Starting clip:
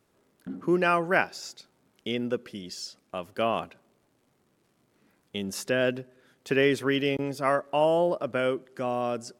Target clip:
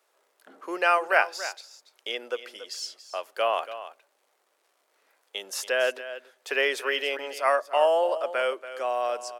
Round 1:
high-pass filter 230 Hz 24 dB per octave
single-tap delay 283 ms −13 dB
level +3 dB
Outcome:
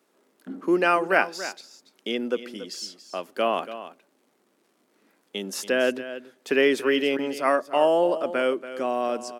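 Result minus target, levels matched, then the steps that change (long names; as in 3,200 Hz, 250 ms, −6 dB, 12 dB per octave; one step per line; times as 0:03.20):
250 Hz band +14.5 dB
change: high-pass filter 520 Hz 24 dB per octave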